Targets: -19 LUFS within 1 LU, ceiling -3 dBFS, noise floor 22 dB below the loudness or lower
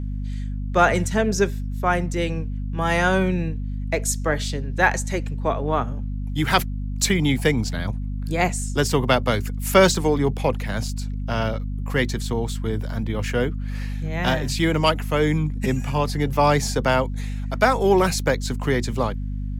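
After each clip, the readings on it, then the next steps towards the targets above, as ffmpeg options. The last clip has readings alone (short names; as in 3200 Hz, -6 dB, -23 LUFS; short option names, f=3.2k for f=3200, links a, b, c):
hum 50 Hz; harmonics up to 250 Hz; hum level -25 dBFS; loudness -22.5 LUFS; peak -2.5 dBFS; loudness target -19.0 LUFS
-> -af "bandreject=f=50:t=h:w=4,bandreject=f=100:t=h:w=4,bandreject=f=150:t=h:w=4,bandreject=f=200:t=h:w=4,bandreject=f=250:t=h:w=4"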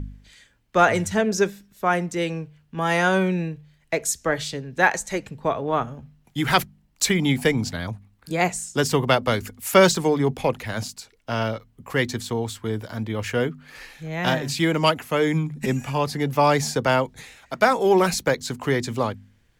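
hum none; loudness -23.0 LUFS; peak -3.0 dBFS; loudness target -19.0 LUFS
-> -af "volume=4dB,alimiter=limit=-3dB:level=0:latency=1"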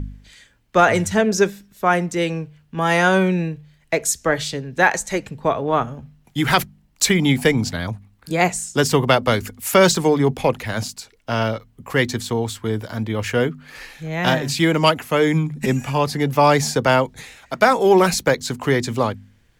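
loudness -19.5 LUFS; peak -3.0 dBFS; noise floor -58 dBFS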